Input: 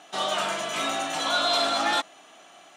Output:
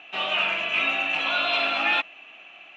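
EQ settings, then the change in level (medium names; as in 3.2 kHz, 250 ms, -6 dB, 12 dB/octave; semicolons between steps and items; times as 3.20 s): resonant low-pass 2.6 kHz, resonance Q 14; -4.0 dB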